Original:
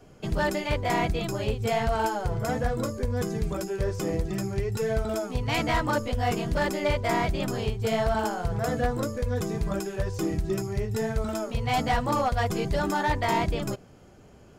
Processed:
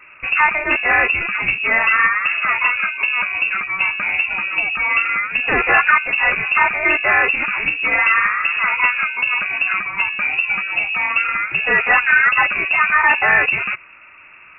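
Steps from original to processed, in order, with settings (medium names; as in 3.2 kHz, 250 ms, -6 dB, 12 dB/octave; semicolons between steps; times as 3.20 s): peaking EQ 1.4 kHz +12 dB 1.1 oct; frequency inversion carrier 2.7 kHz; trim +6.5 dB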